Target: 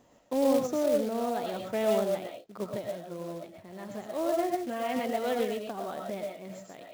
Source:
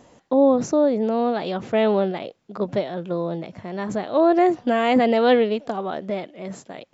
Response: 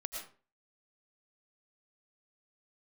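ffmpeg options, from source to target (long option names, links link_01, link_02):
-filter_complex "[0:a]asettb=1/sr,asplit=3[link_01][link_02][link_03];[link_01]atrim=end=2.774[link_04];[link_02]atrim=start=2.77:end=5.39,asetpts=PTS-STARTPTS,afade=type=in:duration=0.004:curve=qsin,afade=type=out:start_time=2.616:duration=0.004:curve=qsin,flanger=delay=2.8:depth=4:regen=-68:speed=1.4:shape=triangular[link_05];[link_03]atrim=start=5.386[link_06];[link_04][link_05]acrossfade=duration=0.004:curve1=hsin:curve2=qsin[link_07];[link_07][link_06]acrossfade=duration=0.004:curve1=qsin:curve2=hsin[link_08];[1:a]atrim=start_sample=2205,atrim=end_sample=6615[link_09];[link_08][link_09]afir=irnorm=-1:irlink=0,acrusher=bits=4:mode=log:mix=0:aa=0.000001,volume=-8dB"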